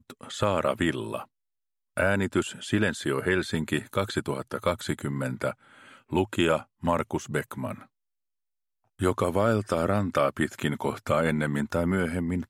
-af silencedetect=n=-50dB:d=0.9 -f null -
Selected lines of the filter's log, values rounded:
silence_start: 7.86
silence_end: 8.99 | silence_duration: 1.13